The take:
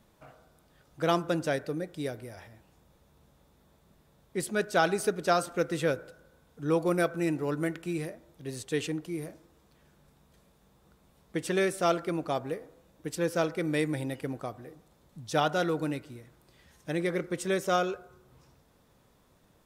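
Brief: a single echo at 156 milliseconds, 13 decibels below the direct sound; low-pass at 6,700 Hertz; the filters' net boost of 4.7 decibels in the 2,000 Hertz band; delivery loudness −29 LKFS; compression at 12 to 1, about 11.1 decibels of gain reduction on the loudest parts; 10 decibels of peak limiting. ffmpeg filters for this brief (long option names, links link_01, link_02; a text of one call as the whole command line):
ffmpeg -i in.wav -af "lowpass=6700,equalizer=frequency=2000:width_type=o:gain=6.5,acompressor=threshold=-30dB:ratio=12,alimiter=level_in=5.5dB:limit=-24dB:level=0:latency=1,volume=-5.5dB,aecho=1:1:156:0.224,volume=12dB" out.wav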